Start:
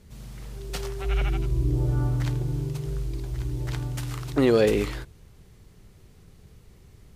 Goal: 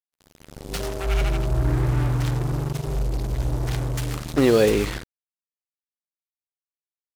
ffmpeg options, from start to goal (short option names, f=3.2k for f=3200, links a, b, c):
-filter_complex "[0:a]asettb=1/sr,asplit=3[a][b][c];[a]atrim=end=2.964[d];[b]atrim=start=2.96:end=4.17,asetpts=PTS-STARTPTS,afade=t=in:d=0.004:c=qsin,afade=t=out:st=1.206:d=0.004:c=qsin,lowshelf=f=62:g=6[e];[c]atrim=start=4.166[f];[d][e]acrossfade=d=0.004:c1=hsin:c2=qsin[g];[g][f]acrossfade=d=0.004:c1=qsin:c2=hsin,acrusher=bits=4:mix=0:aa=0.5,asettb=1/sr,asplit=3[h][i][j];[h]atrim=end=0.804[k];[i]atrim=start=0.8:end=1.73,asetpts=PTS-STARTPTS,afade=t=in:d=0.004:c=qsin,afade=t=out:st=0.926:d=0.004:c=qsin,aeval=exprs='val(0)+0.0112*sin(2*PI*630*n/s)':c=same[l];[j]atrim=start=1.726[m];[k][l]acrossfade=d=0.004:c1=hsin:c2=qsin[n];[n][m]acrossfade=d=0.004:c1=qsin:c2=hsin,volume=2.5dB"